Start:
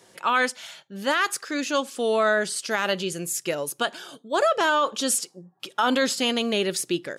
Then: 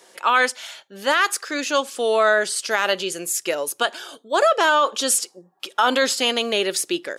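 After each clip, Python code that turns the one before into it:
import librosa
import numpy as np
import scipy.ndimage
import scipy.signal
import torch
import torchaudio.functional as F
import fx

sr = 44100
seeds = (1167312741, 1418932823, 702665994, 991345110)

y = scipy.signal.sosfilt(scipy.signal.butter(2, 360.0, 'highpass', fs=sr, output='sos'), x)
y = y * 10.0 ** (4.5 / 20.0)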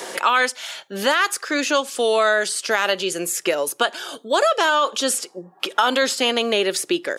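y = fx.band_squash(x, sr, depth_pct=70)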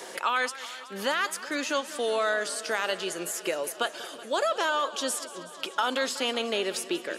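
y = fx.echo_warbled(x, sr, ms=187, feedback_pct=79, rate_hz=2.8, cents=112, wet_db=-16.5)
y = y * 10.0 ** (-9.0 / 20.0)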